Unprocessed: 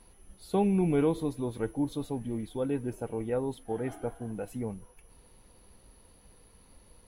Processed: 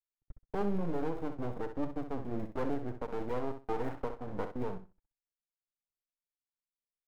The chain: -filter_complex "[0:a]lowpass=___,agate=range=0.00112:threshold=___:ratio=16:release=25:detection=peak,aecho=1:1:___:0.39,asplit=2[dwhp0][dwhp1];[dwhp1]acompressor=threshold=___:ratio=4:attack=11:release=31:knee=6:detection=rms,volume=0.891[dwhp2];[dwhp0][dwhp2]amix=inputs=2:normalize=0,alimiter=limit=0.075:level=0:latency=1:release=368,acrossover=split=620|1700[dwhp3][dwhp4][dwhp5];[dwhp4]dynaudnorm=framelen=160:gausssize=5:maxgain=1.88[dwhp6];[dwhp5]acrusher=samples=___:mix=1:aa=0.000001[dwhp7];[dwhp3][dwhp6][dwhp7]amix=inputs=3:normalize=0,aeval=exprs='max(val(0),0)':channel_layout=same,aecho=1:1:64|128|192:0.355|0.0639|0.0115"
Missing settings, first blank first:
2900, 0.00398, 6.7, 0.0112, 30